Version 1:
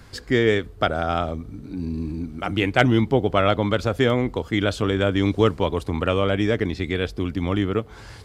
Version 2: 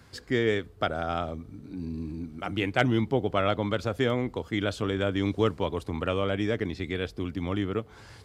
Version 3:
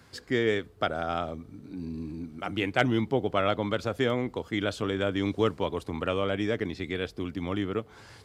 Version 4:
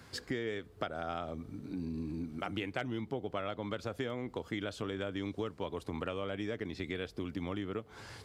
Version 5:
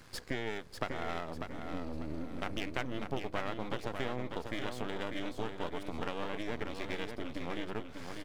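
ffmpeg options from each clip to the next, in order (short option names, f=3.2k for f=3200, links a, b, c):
-af "highpass=66,volume=-6.5dB"
-af "lowshelf=f=83:g=-9"
-af "acompressor=threshold=-35dB:ratio=6,volume=1dB"
-filter_complex "[0:a]aeval=exprs='max(val(0),0)':c=same,asplit=2[a][b];[b]aecho=0:1:595|1190|1785|2380:0.473|0.156|0.0515|0.017[c];[a][c]amix=inputs=2:normalize=0,volume=3dB"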